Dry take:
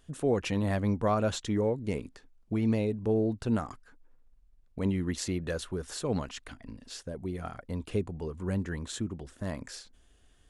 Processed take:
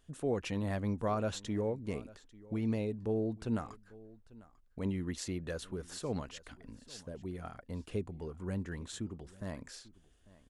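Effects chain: delay 845 ms -21 dB; trim -6 dB

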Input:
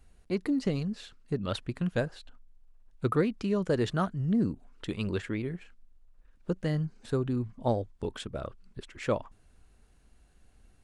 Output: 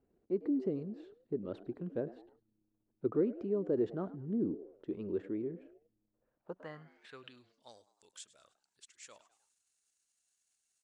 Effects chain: frequency-shifting echo 103 ms, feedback 46%, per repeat +100 Hz, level -21.5 dB; transient shaper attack -1 dB, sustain +4 dB; band-pass sweep 360 Hz -> 7.1 kHz, 6.03–7.80 s

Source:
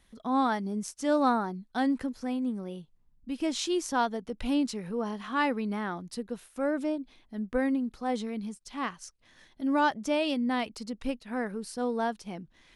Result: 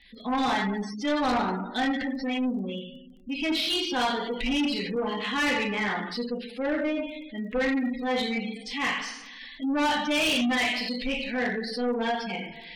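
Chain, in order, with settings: de-esser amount 95%; high-order bell 3 kHz +13 dB; two-slope reverb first 0.74 s, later 2.1 s, DRR -4.5 dB; spectral gate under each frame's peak -20 dB strong; saturation -21.5 dBFS, distortion -10 dB; crackle 13 per s -47 dBFS

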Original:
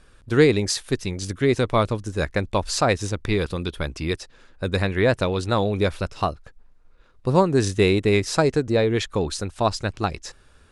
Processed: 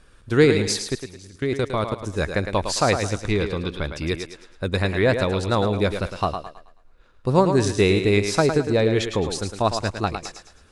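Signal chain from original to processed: 0.79–2.01 s: level held to a coarse grid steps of 22 dB; 3.17–3.94 s: Bessel low-pass 5.7 kHz, order 2; thinning echo 108 ms, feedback 37%, high-pass 190 Hz, level -7 dB

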